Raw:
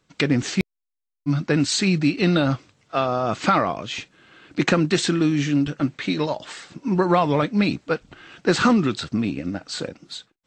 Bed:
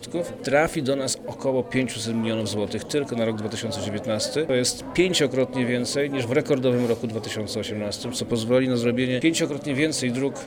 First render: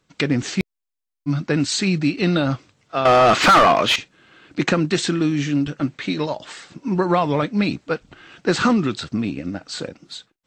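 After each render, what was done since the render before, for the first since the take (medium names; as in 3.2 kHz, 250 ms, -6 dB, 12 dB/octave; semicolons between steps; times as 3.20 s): 3.05–3.96 s: overdrive pedal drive 27 dB, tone 3 kHz, clips at -4.5 dBFS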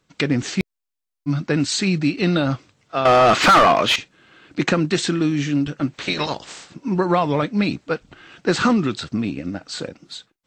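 5.93–6.65 s: spectral peaks clipped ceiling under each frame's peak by 17 dB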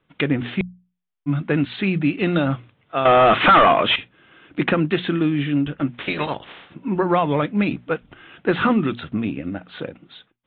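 steep low-pass 3.6 kHz 96 dB/octave; hum notches 60/120/180/240 Hz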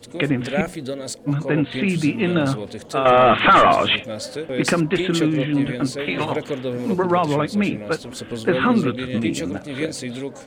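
add bed -5 dB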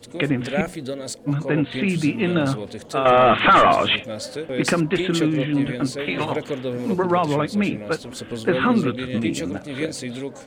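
trim -1 dB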